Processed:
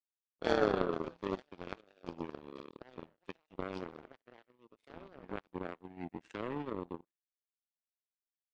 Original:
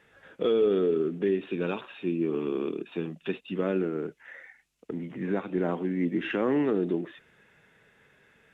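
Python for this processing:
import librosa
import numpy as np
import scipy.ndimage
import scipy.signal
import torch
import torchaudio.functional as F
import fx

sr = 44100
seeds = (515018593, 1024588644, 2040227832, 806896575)

y = fx.low_shelf(x, sr, hz=120.0, db=8.0, at=(0.73, 1.22))
y = fx.echo_pitch(y, sr, ms=118, semitones=5, count=2, db_per_echo=-6.0)
y = y + 10.0 ** (-18.5 / 20.0) * np.pad(y, (int(72 * sr / 1000.0), 0))[:len(y)]
y = fx.power_curve(y, sr, exponent=3.0)
y = F.gain(torch.from_numpy(y), 1.0).numpy()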